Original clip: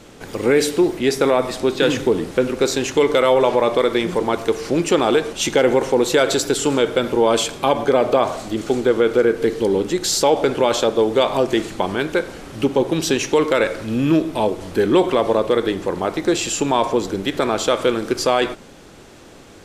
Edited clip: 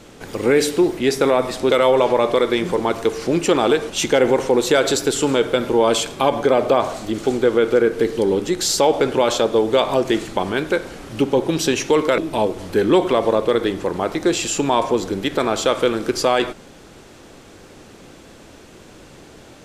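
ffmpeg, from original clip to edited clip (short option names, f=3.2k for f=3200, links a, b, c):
-filter_complex "[0:a]asplit=3[a][b][c];[a]atrim=end=1.712[d];[b]atrim=start=3.138:end=13.612[e];[c]atrim=start=14.198[f];[d][e]acrossfade=d=0.004:c1=hsin:c2=hsin[g];[g][f]acrossfade=d=0.004:c1=hsin:c2=hsin"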